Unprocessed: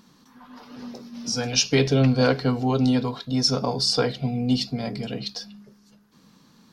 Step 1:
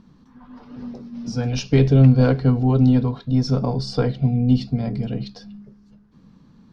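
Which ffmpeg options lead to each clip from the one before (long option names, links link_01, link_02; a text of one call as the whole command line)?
ffmpeg -i in.wav -af "aeval=exprs='0.501*(cos(1*acos(clip(val(0)/0.501,-1,1)))-cos(1*PI/2))+0.126*(cos(2*acos(clip(val(0)/0.501,-1,1)))-cos(2*PI/2))+0.0562*(cos(4*acos(clip(val(0)/0.501,-1,1)))-cos(4*PI/2))+0.00794*(cos(6*acos(clip(val(0)/0.501,-1,1)))-cos(6*PI/2))':channel_layout=same,aemphasis=mode=reproduction:type=riaa,volume=-2.5dB" out.wav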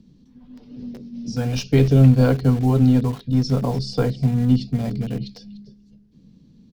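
ffmpeg -i in.wav -filter_complex "[0:a]acrossover=split=100|590|2300[link_01][link_02][link_03][link_04];[link_03]acrusher=bits=6:mix=0:aa=0.000001[link_05];[link_04]aecho=1:1:296:0.133[link_06];[link_01][link_02][link_05][link_06]amix=inputs=4:normalize=0" out.wav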